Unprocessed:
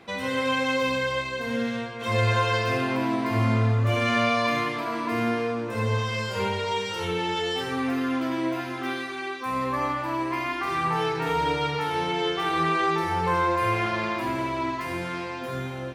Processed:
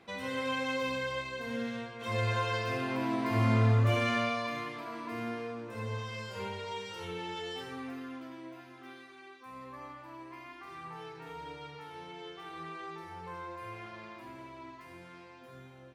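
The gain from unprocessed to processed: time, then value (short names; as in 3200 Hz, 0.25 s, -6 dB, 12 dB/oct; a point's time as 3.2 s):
2.78 s -8.5 dB
3.78 s -2 dB
4.49 s -12 dB
7.57 s -12 dB
8.43 s -19.5 dB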